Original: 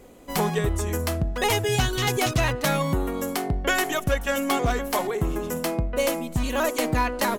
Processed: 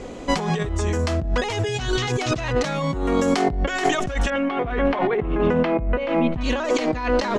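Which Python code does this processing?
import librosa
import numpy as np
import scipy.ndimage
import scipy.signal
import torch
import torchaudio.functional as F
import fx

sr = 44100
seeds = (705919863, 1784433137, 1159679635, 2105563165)

y = fx.lowpass(x, sr, hz=fx.steps((0.0, 6900.0), (4.3, 2900.0), (6.41, 5700.0)), slope=24)
y = fx.over_compress(y, sr, threshold_db=-31.0, ratio=-1.0)
y = y * librosa.db_to_amplitude(8.5)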